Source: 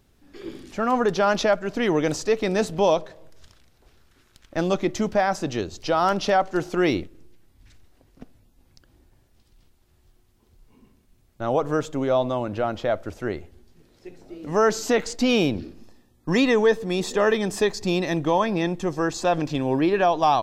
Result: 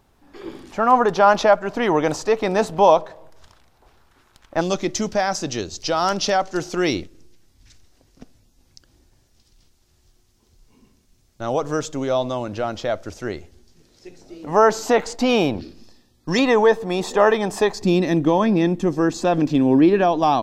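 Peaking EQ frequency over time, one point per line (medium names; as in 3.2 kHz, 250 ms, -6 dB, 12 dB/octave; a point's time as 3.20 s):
peaking EQ +10.5 dB 1.2 oct
910 Hz
from 4.61 s 5.8 kHz
from 14.43 s 850 Hz
from 15.61 s 4.7 kHz
from 16.39 s 850 Hz
from 17.82 s 250 Hz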